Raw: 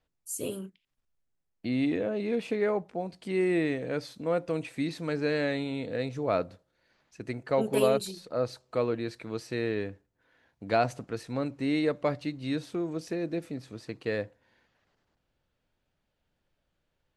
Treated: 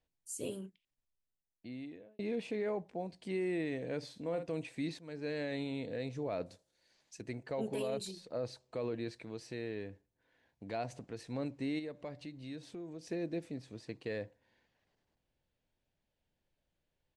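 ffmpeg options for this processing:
-filter_complex "[0:a]asplit=3[a][b][c];[a]afade=t=out:st=4.02:d=0.02[d];[b]asplit=2[e][f];[f]adelay=48,volume=-10.5dB[g];[e][g]amix=inputs=2:normalize=0,afade=t=in:st=4.02:d=0.02,afade=t=out:st=4.49:d=0.02[h];[c]afade=t=in:st=4.49:d=0.02[i];[d][h][i]amix=inputs=3:normalize=0,asettb=1/sr,asplit=3[j][k][l];[j]atrim=end=6.464[m];[k]atrim=start=6.46:end=7.21,asetpts=PTS-STARTPTS,afade=t=in:d=0.004:c=qsin,afade=t=out:st=0.746:d=0.004:c=qsin,bass=f=250:g=-4,treble=f=4k:g=15[n];[l]atrim=start=7.206[o];[m][n]acrossfade=d=0.004:c1=hsin:c2=qsin[p];[p][o]acrossfade=d=0.004:c1=qsin:c2=hsin,asettb=1/sr,asplit=3[q][r][s];[q]atrim=end=9.124[t];[r]atrim=start=9.12:end=11.19,asetpts=PTS-STARTPTS,afade=t=in:d=0.004:c=qsin,afade=t=out:st=2.066:d=0.004:c=qsin,acompressor=threshold=-38dB:ratio=1.5:attack=3.2:release=140:knee=1:detection=peak[u];[s]atrim=start=11.186[v];[t][u]acrossfade=d=0.004:c1=hsin:c2=qsin[w];[w][v]acrossfade=d=0.004:c1=qsin:c2=hsin,asplit=3[x][y][z];[x]afade=t=out:st=11.78:d=0.02[aa];[y]acompressor=threshold=-42dB:ratio=2:attack=3.2:release=140:knee=1:detection=peak,afade=t=in:st=11.78:d=0.02,afade=t=out:st=13.04:d=0.02[ab];[z]afade=t=in:st=13.04:d=0.02[ac];[aa][ab][ac]amix=inputs=3:normalize=0,asplit=3[ad][ae][af];[ad]atrim=end=2.19,asetpts=PTS-STARTPTS,afade=t=out:st=0.65:d=1.54[ag];[ae]atrim=start=2.19:end=4.99,asetpts=PTS-STARTPTS,afade=t=in:d=0.004:c=hsin,afade=t=out:st=2.796:d=0.004:c=hsin:silence=0.16788[ah];[af]atrim=start=4.99,asetpts=PTS-STARTPTS,afade=t=in:d=0.55:silence=0.16788[ai];[ag][ah][ai]concat=n=3:v=0:a=1,lowpass=f=10k:w=0.5412,lowpass=f=10k:w=1.3066,equalizer=f=1.3k:t=o:w=0.4:g=-8,alimiter=limit=-23dB:level=0:latency=1:release=18,volume=-5.5dB"

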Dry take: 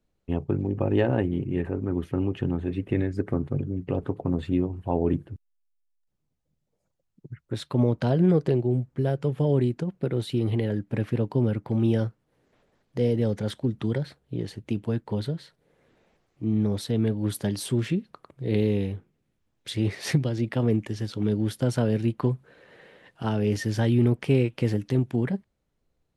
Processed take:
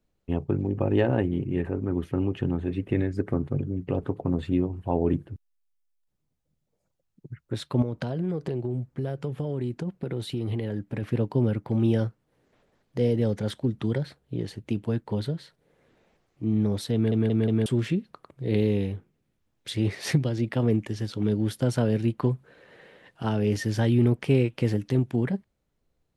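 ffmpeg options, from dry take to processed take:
-filter_complex "[0:a]asettb=1/sr,asplit=3[a][b][c];[a]atrim=end=7.824[d];[b]atrim=start=7.82:end=11.03,asetpts=PTS-STARTPTS,afade=t=in:d=0.004:c=qsin,afade=t=out:st=3.206:d=0.004:c=qsin,acompressor=threshold=-25dB:ratio=6:attack=3.2:release=140:knee=1:detection=peak[e];[c]atrim=start=11.026[f];[d][e]acrossfade=d=0.004:c1=hsin:c2=qsin[g];[g][f]acrossfade=d=0.004:c1=qsin:c2=hsin,asplit=5[h][i][j][k][l];[h]atrim=end=17.122[m];[i]atrim=start=16.938:end=17.122[n];[j]atrim=start=16.938:end=17.122[o];[k]atrim=start=16.938:end=17.122[p];[l]atrim=start=17.658[q];[m][n]acrossfade=d=0.004:c1=hsin:c2=hsin[r];[r][o]acrossfade=d=0.004:c1=hsin:c2=hsin[s];[s][p]acrossfade=d=0.004:c1=hsin:c2=hsin[t];[t][q]acrossfade=d=0.004:c1=hsin:c2=hsin"

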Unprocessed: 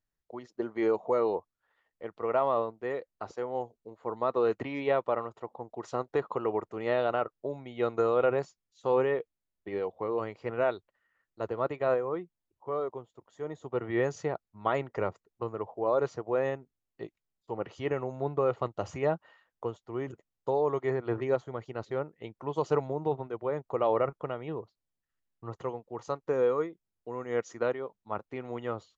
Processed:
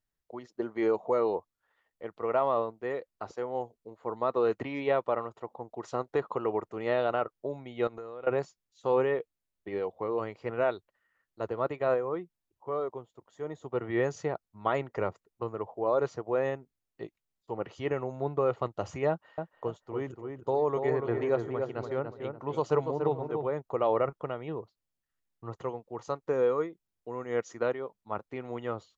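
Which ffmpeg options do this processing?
-filter_complex "[0:a]asettb=1/sr,asplit=3[a][b][c];[a]atrim=end=7.874[d];[b]atrim=start=7.87:end=8.27,asetpts=PTS-STARTPTS,afade=t=in:d=0.004:c=qsin,afade=t=out:st=0.396:d=0.004:c=qsin,acompressor=threshold=-40dB:ratio=5:attack=3.2:release=140:knee=1:detection=peak[e];[c]atrim=start=8.266[f];[d][e]acrossfade=d=0.004:c1=hsin:c2=qsin[g];[g][f]acrossfade=d=0.004:c1=qsin:c2=hsin,asettb=1/sr,asplit=3[h][i][j];[h]atrim=end=19.094[k];[i]atrim=start=19.09:end=23.47,asetpts=PTS-STARTPTS,afade=t=in:d=0.004:c=qsin,afade=t=out:st=4.376:d=0.004:c=qsin,asplit=2[l][m];[m]adelay=288,lowpass=f=1.8k:p=1,volume=-5dB,asplit=2[n][o];[o]adelay=288,lowpass=f=1.8k:p=1,volume=0.34,asplit=2[p][q];[q]adelay=288,lowpass=f=1.8k:p=1,volume=0.34,asplit=2[r][s];[s]adelay=288,lowpass=f=1.8k:p=1,volume=0.34[t];[l][n][p][r][t]amix=inputs=5:normalize=0,atrim=end_sample=193158[u];[j]atrim=start=23.466[v];[k][u]acrossfade=d=0.004:c1=hsin:c2=qsin[w];[w][v]acrossfade=d=0.004:c1=qsin:c2=hsin"

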